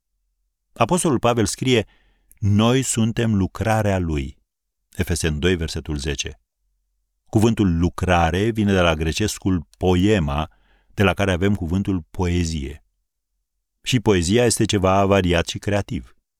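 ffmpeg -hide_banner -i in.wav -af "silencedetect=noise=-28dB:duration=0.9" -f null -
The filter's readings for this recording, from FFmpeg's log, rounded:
silence_start: 6.31
silence_end: 7.33 | silence_duration: 1.02
silence_start: 12.71
silence_end: 13.86 | silence_duration: 1.15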